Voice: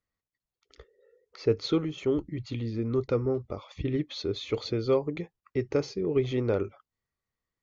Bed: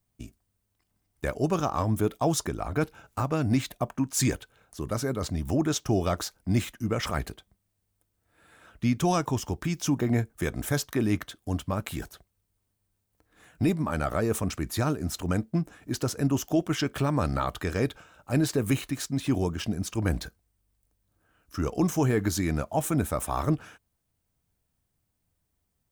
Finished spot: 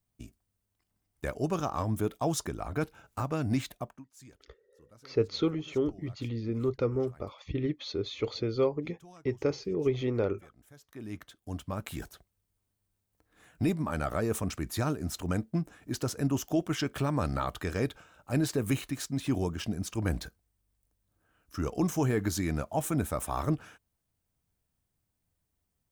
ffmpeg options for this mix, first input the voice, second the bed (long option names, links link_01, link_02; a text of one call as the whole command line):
ffmpeg -i stem1.wav -i stem2.wav -filter_complex "[0:a]adelay=3700,volume=-2dB[link_01];[1:a]volume=20.5dB,afade=type=out:start_time=3.68:duration=0.36:silence=0.0630957,afade=type=in:start_time=10.8:duration=1.3:silence=0.0562341[link_02];[link_01][link_02]amix=inputs=2:normalize=0" out.wav